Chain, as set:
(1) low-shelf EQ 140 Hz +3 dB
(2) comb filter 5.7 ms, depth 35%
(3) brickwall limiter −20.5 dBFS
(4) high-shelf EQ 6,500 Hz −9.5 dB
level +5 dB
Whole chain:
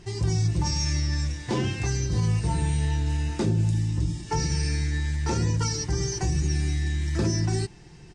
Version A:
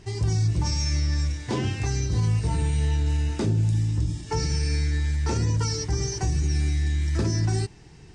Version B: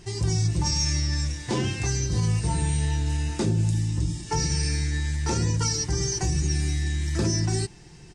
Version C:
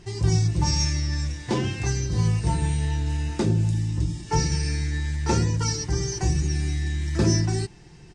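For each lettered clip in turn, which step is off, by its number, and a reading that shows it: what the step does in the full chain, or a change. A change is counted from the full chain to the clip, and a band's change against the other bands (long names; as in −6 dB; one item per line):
2, 125 Hz band +2.5 dB
4, 8 kHz band +4.5 dB
3, change in crest factor +4.5 dB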